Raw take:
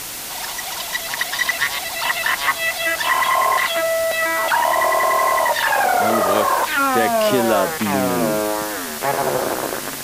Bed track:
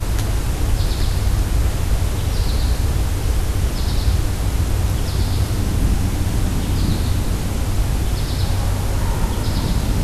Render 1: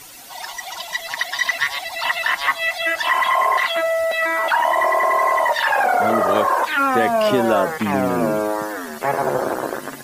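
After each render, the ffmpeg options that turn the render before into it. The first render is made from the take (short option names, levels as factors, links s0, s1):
-af "afftdn=nr=14:nf=-29"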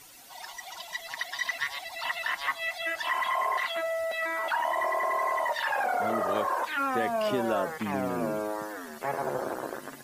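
-af "volume=0.282"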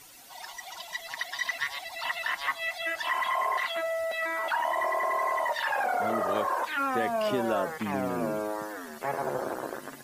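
-af anull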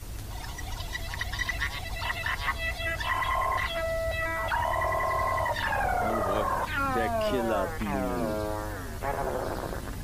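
-filter_complex "[1:a]volume=0.112[s0];[0:a][s0]amix=inputs=2:normalize=0"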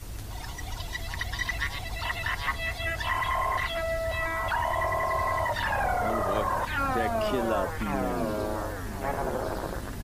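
-filter_complex "[0:a]asplit=2[s0][s1];[s1]adelay=1050,volume=0.355,highshelf=f=4000:g=-23.6[s2];[s0][s2]amix=inputs=2:normalize=0"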